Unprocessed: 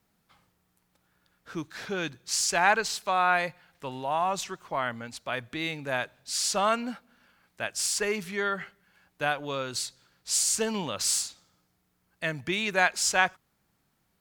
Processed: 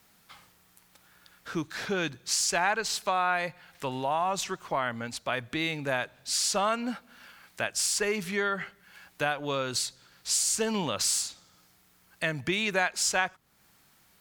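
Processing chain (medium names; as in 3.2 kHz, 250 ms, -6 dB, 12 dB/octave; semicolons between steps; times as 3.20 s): compression 2.5:1, threshold -30 dBFS, peak gain reduction 9.5 dB; tape noise reduction on one side only encoder only; trim +4 dB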